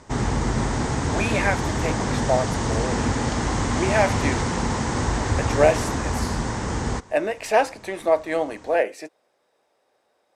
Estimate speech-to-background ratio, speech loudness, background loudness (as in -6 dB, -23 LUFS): -0.5 dB, -25.0 LUFS, -24.5 LUFS